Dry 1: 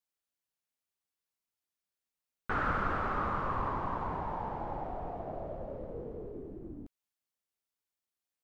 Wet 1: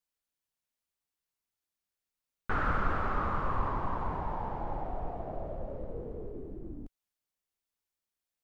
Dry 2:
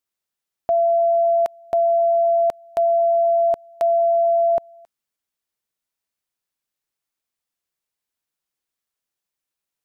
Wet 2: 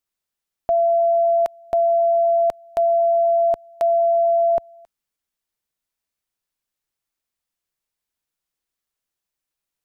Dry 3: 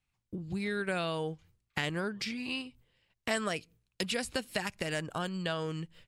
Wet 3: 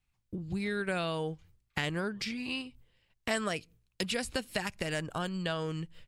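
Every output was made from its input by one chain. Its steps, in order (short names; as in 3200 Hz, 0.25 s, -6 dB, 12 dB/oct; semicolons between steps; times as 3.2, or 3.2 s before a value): low shelf 61 Hz +9.5 dB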